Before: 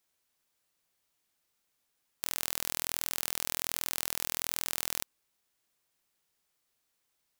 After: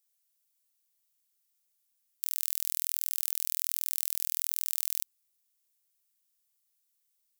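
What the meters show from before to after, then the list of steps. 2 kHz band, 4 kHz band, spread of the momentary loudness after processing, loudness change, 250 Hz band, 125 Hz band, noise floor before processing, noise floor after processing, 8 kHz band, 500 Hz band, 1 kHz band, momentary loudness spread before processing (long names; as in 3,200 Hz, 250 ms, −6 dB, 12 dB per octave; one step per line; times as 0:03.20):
−10.5 dB, −5.0 dB, 4 LU, +3.0 dB, below −15 dB, below −15 dB, −79 dBFS, −77 dBFS, +0.5 dB, below −15 dB, below −10 dB, 4 LU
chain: first-order pre-emphasis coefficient 0.9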